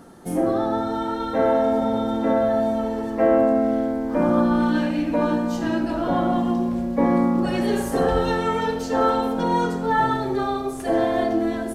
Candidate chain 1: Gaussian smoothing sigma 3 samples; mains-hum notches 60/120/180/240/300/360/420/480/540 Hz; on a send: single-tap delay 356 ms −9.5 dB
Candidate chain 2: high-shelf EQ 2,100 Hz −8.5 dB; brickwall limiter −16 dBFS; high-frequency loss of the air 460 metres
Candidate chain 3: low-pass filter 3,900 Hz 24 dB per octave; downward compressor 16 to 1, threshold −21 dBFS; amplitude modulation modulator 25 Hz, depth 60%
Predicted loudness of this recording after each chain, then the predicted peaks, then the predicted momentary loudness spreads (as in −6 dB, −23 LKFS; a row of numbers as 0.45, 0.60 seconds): −22.0, −26.0, −29.5 LKFS; −7.0, −16.5, −14.5 dBFS; 5, 3, 2 LU